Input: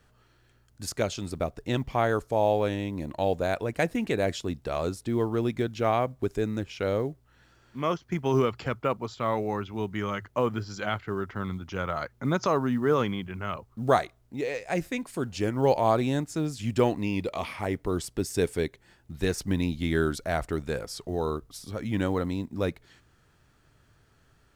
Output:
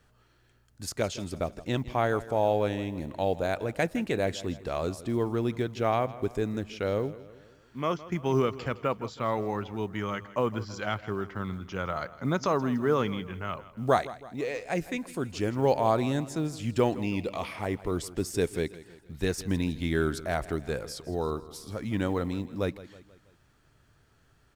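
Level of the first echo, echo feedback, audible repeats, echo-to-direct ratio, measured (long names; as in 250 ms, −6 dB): −17.0 dB, 49%, 3, −16.0 dB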